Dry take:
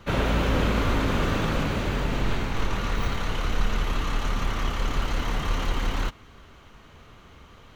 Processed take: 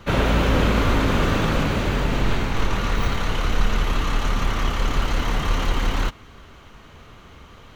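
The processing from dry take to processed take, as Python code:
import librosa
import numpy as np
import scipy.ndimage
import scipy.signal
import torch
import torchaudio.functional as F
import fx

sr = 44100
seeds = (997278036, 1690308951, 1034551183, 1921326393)

y = x * librosa.db_to_amplitude(4.5)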